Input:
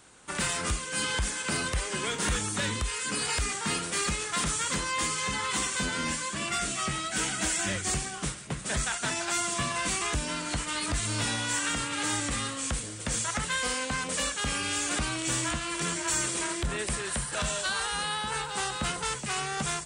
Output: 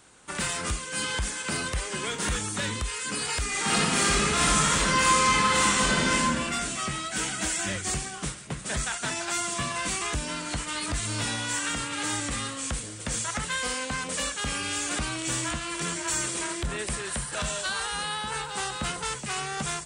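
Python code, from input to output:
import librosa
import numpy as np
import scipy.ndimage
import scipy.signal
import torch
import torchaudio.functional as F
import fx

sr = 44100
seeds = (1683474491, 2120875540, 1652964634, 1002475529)

y = fx.reverb_throw(x, sr, start_s=3.49, length_s=2.69, rt60_s=1.7, drr_db=-7.5)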